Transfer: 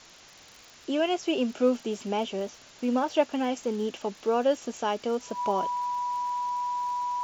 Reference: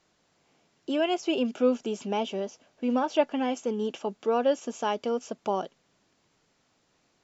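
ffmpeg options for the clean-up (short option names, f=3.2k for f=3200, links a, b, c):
-af "adeclick=t=4,bandreject=f=980:w=30,afwtdn=0.004"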